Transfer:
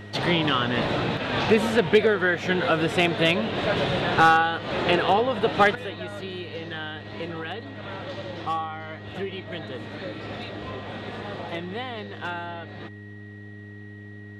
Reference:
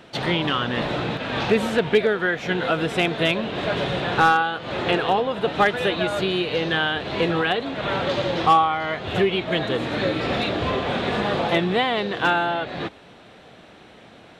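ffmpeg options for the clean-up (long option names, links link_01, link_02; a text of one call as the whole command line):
ffmpeg -i in.wav -af "bandreject=frequency=103:width_type=h:width=4,bandreject=frequency=206:width_type=h:width=4,bandreject=frequency=309:width_type=h:width=4,bandreject=frequency=412:width_type=h:width=4,bandreject=frequency=1900:width=30,asetnsamples=nb_out_samples=441:pad=0,asendcmd='5.75 volume volume 12dB',volume=0dB" out.wav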